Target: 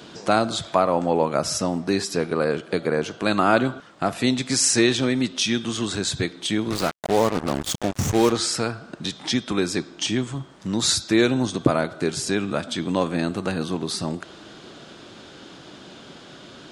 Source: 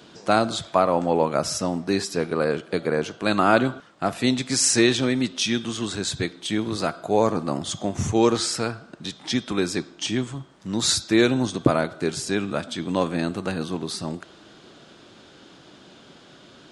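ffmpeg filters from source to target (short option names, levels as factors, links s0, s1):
-filter_complex "[0:a]asplit=2[s0][s1];[s1]acompressor=threshold=0.0282:ratio=16,volume=1.26[s2];[s0][s2]amix=inputs=2:normalize=0,asettb=1/sr,asplit=3[s3][s4][s5];[s3]atrim=end=6.704[s6];[s4]atrim=start=6.7:end=8.32,asetpts=PTS-STARTPTS,afade=t=in:d=0.004:c=qsin,afade=t=out:st=1.616:d=0.004:c=qsin,acrusher=bits=3:mix=0:aa=0.5[s7];[s5]atrim=start=8.316[s8];[s6][s7]acrossfade=d=0.004:c1=hsin:c2=qsin[s9];[s9][s8]acrossfade=d=0.004:c1=qsin:c2=hsin,volume=0.841"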